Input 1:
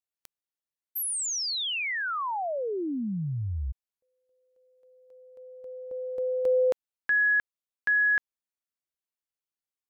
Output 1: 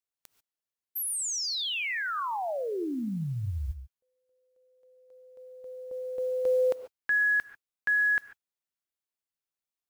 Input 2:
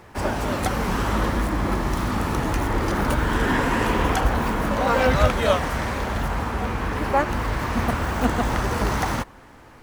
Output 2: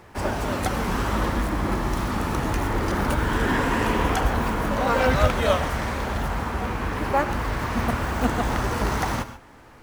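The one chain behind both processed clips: modulation noise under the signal 33 dB; non-linear reverb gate 0.16 s rising, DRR 11.5 dB; gain -1.5 dB

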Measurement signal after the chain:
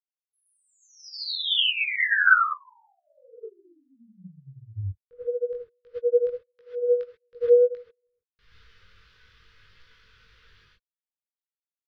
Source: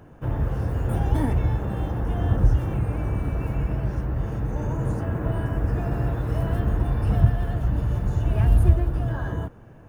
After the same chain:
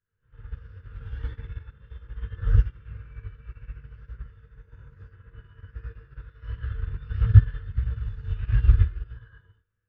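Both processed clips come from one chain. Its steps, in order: low shelf 110 Hz +5 dB; non-linear reverb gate 0.15 s rising, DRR -5 dB; chorus voices 4, 1.5 Hz, delay 20 ms, depth 3 ms; EQ curve 150 Hz 0 dB, 290 Hz -15 dB, 460 Hz +2 dB, 720 Hz -23 dB, 1000 Hz -3 dB, 1500 Hz +12 dB, 2200 Hz +7 dB, 3300 Hz +9 dB, 5100 Hz +4 dB, 7900 Hz -20 dB; upward expander 2.5:1, over -23 dBFS; gain -4.5 dB

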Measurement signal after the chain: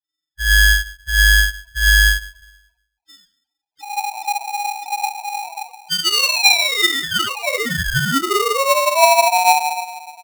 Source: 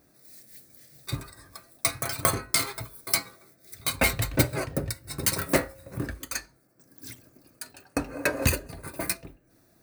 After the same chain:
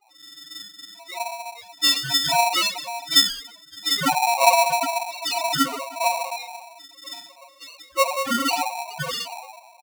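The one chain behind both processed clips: nonlinear frequency compression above 2600 Hz 4:1; harmonic tremolo 3 Hz, depth 70%, crossover 770 Hz; doubler 29 ms -12 dB; shoebox room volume 300 m³, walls mixed, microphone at 5.6 m; loudest bins only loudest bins 2; polarity switched at an audio rate 820 Hz

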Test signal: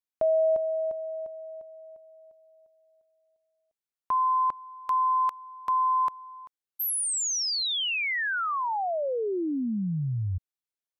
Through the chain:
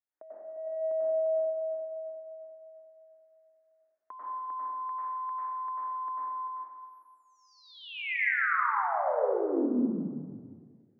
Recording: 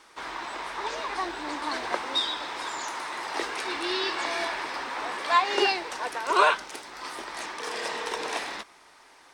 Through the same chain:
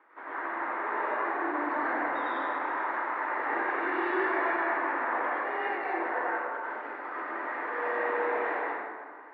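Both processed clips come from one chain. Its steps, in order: elliptic band-pass 280–1900 Hz, stop band 60 dB; negative-ratio compressor -31 dBFS, ratio -0.5; plate-style reverb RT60 1.8 s, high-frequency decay 0.55×, pre-delay 85 ms, DRR -8.5 dB; gain -7 dB

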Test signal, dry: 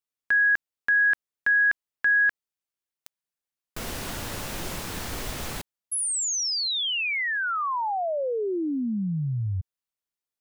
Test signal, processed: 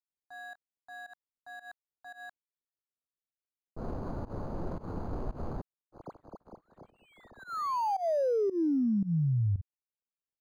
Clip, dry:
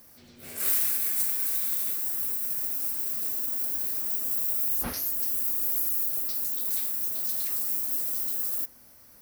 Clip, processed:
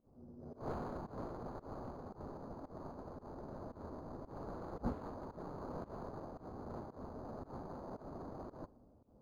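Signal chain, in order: median filter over 25 samples; band shelf 4200 Hz -13 dB 2.3 oct; low-pass opened by the level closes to 660 Hz, open at -26.5 dBFS; pump 113 bpm, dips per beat 1, -21 dB, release 0.137 s; decimation joined by straight lines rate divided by 8×

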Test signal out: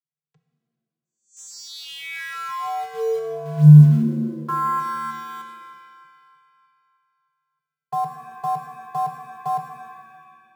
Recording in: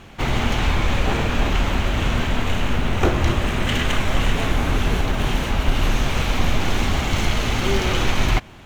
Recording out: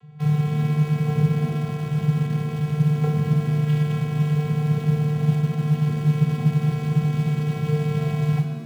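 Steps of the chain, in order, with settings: tone controls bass +10 dB, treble -2 dB; vocoder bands 16, square 150 Hz; in parallel at -10.5 dB: bit-crush 5-bit; on the sum: shimmer reverb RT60 1.8 s, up +7 st, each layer -8 dB, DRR 5 dB; gain -5.5 dB

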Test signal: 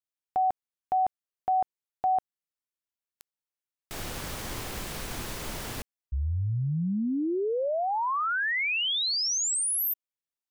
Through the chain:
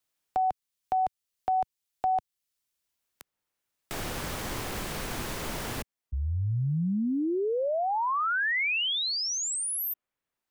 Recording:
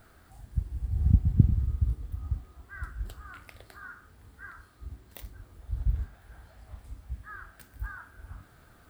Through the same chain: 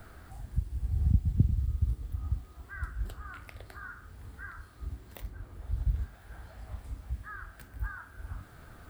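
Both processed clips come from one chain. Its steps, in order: three-band squash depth 40%

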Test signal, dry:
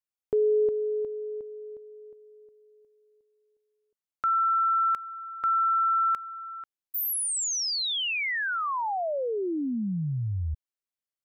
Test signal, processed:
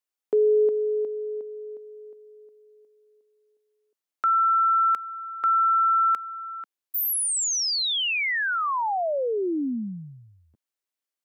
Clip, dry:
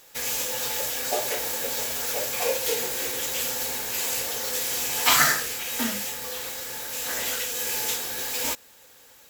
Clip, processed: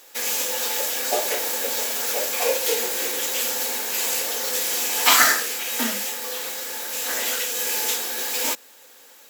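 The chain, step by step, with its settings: HPF 230 Hz 24 dB/oct; gain +3.5 dB

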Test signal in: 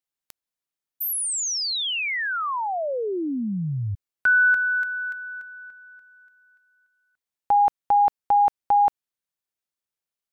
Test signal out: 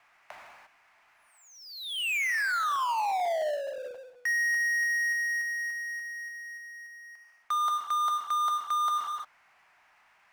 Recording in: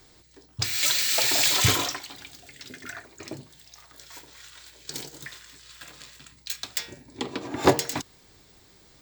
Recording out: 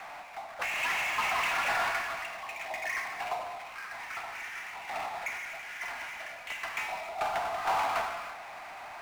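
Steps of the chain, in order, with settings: in parallel at -10.5 dB: Schmitt trigger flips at -19 dBFS; on the sum: non-linear reverb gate 0.37 s falling, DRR 8 dB; mistuned SSB +390 Hz 260–2100 Hz; reverse; compressor 6:1, threshold -28 dBFS; reverse; power-law curve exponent 0.5; gain -3.5 dB

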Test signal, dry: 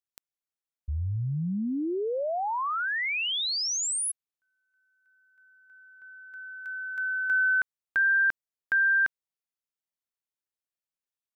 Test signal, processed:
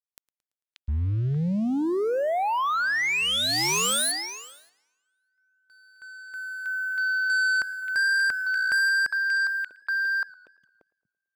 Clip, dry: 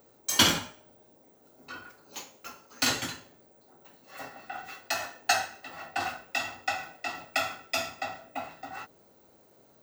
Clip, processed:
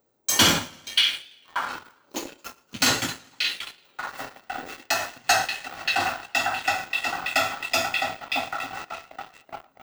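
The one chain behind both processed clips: delay with a stepping band-pass 0.583 s, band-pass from 2900 Hz, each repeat -1.4 oct, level -1 dB; sample leveller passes 3; warbling echo 0.112 s, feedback 50%, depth 109 cents, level -23 dB; gain -4.5 dB

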